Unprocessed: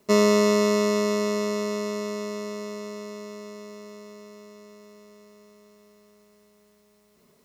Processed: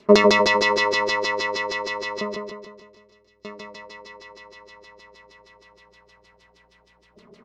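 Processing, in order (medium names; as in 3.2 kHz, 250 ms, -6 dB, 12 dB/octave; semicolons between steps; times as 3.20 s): 2.21–3.45 s: amplifier tone stack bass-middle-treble 10-0-1; de-hum 69.37 Hz, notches 28; LFO low-pass saw down 6.4 Hz 350–5200 Hz; on a send: feedback delay 151 ms, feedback 51%, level -4 dB; on the sum: trim +7.5 dB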